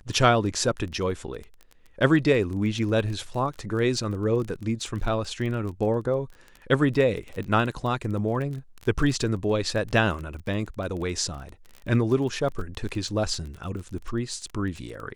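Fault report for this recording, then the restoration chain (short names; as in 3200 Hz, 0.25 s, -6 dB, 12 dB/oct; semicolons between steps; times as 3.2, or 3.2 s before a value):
crackle 21/s -32 dBFS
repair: de-click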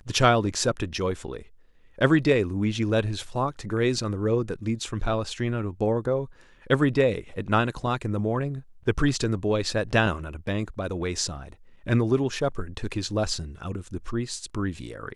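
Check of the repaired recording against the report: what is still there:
none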